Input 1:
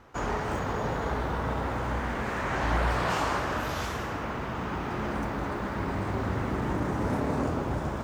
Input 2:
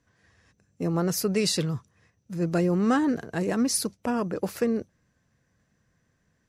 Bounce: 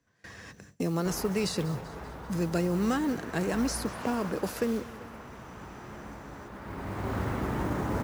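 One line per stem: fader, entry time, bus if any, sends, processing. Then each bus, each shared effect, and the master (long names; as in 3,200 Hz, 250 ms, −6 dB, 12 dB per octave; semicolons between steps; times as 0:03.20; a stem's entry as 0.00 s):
−1.5 dB, 0.90 s, no send, no echo send, automatic ducking −11 dB, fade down 1.55 s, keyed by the second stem
−4.0 dB, 0.00 s, no send, echo send −18 dB, multiband upward and downward compressor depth 70%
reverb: not used
echo: repeating echo 194 ms, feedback 59%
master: noise gate with hold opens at −38 dBFS; noise that follows the level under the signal 26 dB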